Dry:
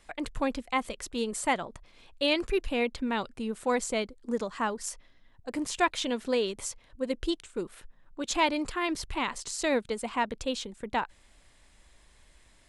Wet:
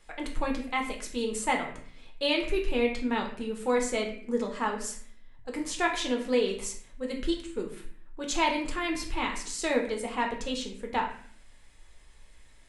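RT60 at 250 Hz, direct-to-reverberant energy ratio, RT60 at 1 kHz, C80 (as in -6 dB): 0.80 s, 0.5 dB, 0.50 s, 11.0 dB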